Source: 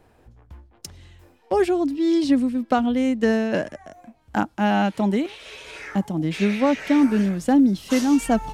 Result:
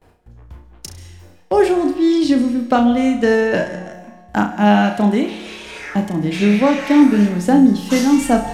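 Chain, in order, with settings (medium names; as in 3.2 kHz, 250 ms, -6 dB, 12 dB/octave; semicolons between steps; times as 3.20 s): gate with hold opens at -46 dBFS; flutter echo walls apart 5.8 m, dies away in 0.33 s; on a send at -12.5 dB: reverberation RT60 1.3 s, pre-delay 128 ms; on the sum: trim +4.5 dB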